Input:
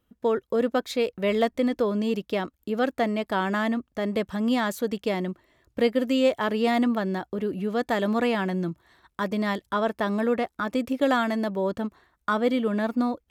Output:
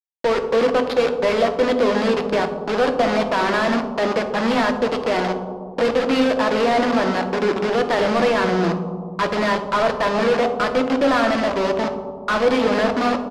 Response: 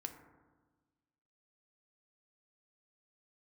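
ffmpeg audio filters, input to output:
-filter_complex "[0:a]highpass=130,bandreject=frequency=60:width_type=h:width=6,bandreject=frequency=120:width_type=h:width=6,bandreject=frequency=180:width_type=h:width=6,bandreject=frequency=240:width_type=h:width=6,aresample=11025,acrusher=bits=4:mix=0:aa=0.000001,aresample=44100,asplit=2[link_01][link_02];[link_02]highpass=frequency=720:poles=1,volume=23dB,asoftclip=type=tanh:threshold=-10.5dB[link_03];[link_01][link_03]amix=inputs=2:normalize=0,lowpass=frequency=1700:poles=1,volume=-6dB[link_04];[1:a]atrim=start_sample=2205,asetrate=24696,aresample=44100[link_05];[link_04][link_05]afir=irnorm=-1:irlink=0,volume=1dB"

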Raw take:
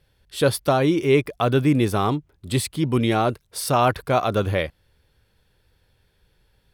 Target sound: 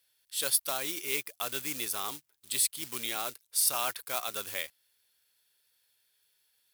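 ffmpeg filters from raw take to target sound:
ffmpeg -i in.wav -af "acrusher=bits=5:mode=log:mix=0:aa=0.000001,aderivative,volume=2dB" out.wav

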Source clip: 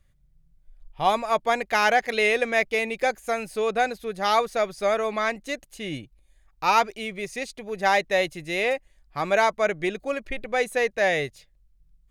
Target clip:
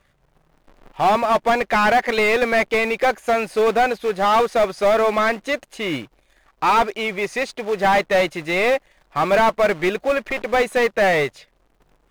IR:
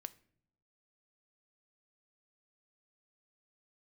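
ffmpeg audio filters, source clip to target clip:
-filter_complex "[0:a]acrusher=bits=3:mode=log:mix=0:aa=0.000001,asplit=2[link_01][link_02];[link_02]highpass=frequency=720:poles=1,volume=23dB,asoftclip=type=tanh:threshold=-6.5dB[link_03];[link_01][link_03]amix=inputs=2:normalize=0,lowpass=frequency=1300:poles=1,volume=-6dB"

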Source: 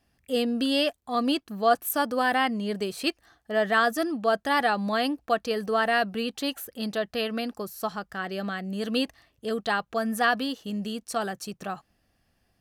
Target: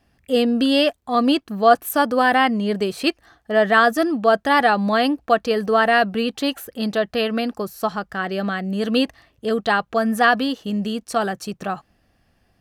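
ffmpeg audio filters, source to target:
ffmpeg -i in.wav -af "highshelf=frequency=4300:gain=-7,volume=8dB" out.wav

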